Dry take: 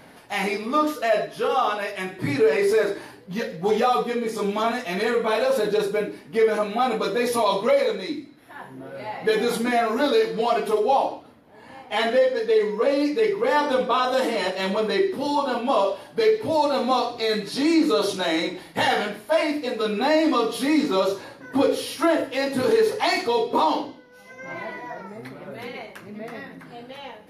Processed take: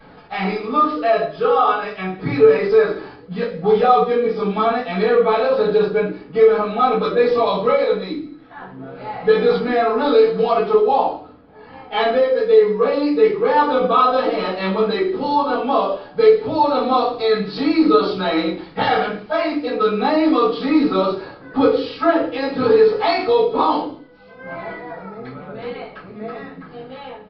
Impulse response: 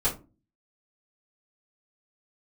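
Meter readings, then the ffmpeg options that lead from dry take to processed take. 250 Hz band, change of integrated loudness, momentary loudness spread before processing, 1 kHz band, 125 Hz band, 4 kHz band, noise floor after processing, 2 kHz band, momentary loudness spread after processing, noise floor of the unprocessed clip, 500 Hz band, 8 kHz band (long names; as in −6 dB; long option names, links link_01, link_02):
+4.5 dB, +5.5 dB, 16 LU, +5.5 dB, +6.5 dB, 0.0 dB, −42 dBFS, +1.0 dB, 17 LU, −47 dBFS, +6.0 dB, below −20 dB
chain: -filter_complex "[0:a]equalizer=frequency=1300:width=7.1:gain=8[link_01];[1:a]atrim=start_sample=2205[link_02];[link_01][link_02]afir=irnorm=-1:irlink=0,aresample=11025,aresample=44100,volume=-7.5dB"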